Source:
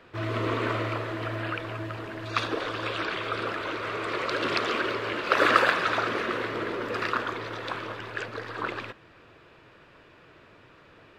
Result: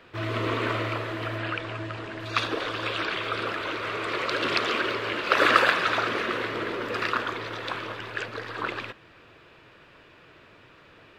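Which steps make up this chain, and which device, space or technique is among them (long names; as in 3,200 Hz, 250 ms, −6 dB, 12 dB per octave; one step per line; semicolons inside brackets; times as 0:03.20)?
0:01.38–0:02.20: low-pass filter 9,000 Hz 24 dB per octave
presence and air boost (parametric band 3,000 Hz +3.5 dB 1.5 octaves; high-shelf EQ 10,000 Hz +4 dB)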